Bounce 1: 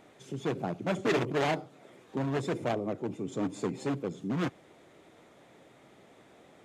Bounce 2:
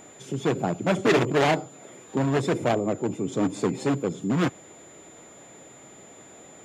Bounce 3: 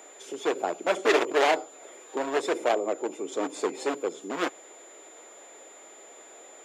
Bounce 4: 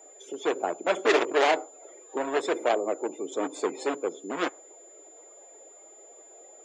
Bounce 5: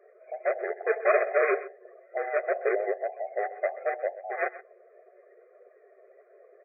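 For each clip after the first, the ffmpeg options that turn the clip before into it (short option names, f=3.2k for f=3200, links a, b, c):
-af "aeval=exprs='val(0)+0.00141*sin(2*PI*7100*n/s)':c=same,volume=7.5dB"
-af "highpass=f=370:w=0.5412,highpass=f=370:w=1.3066"
-af "afftdn=nr=14:nf=-46"
-filter_complex "[0:a]afftfilt=real='real(if(between(b,1,1008),(2*floor((b-1)/48)+1)*48-b,b),0)':imag='imag(if(between(b,1,1008),(2*floor((b-1)/48)+1)*48-b,b),0)*if(between(b,1,1008),-1,1)':win_size=2048:overlap=0.75,afftfilt=real='re*between(b*sr/4096,360,2500)':imag='im*between(b*sr/4096,360,2500)':win_size=4096:overlap=0.75,asplit=2[a][b];[b]adelay=128.3,volume=-16dB,highshelf=f=4k:g=-2.89[c];[a][c]amix=inputs=2:normalize=0"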